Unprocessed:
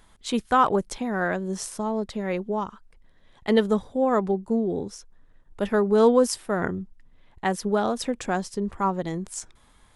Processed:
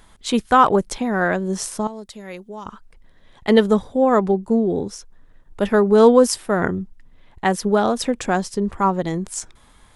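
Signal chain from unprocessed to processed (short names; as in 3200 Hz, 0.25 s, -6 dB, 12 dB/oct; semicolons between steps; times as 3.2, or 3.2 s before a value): 1.87–2.66 pre-emphasis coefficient 0.8; gain +6 dB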